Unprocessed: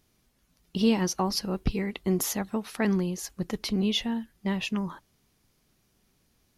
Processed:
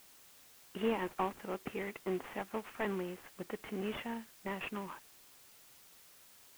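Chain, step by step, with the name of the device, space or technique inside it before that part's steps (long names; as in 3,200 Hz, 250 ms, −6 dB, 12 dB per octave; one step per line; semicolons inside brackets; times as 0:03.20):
army field radio (band-pass filter 370–3,100 Hz; variable-slope delta modulation 16 kbit/s; white noise bed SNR 19 dB)
level −3.5 dB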